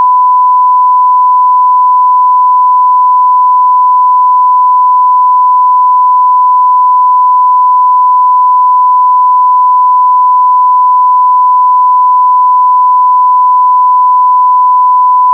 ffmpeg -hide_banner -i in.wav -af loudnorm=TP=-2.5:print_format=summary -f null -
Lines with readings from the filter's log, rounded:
Input Integrated:     -5.4 LUFS
Input True Peak:      -2.3 dBTP
Input LRA:             0.0 LU
Input Threshold:     -15.4 LUFS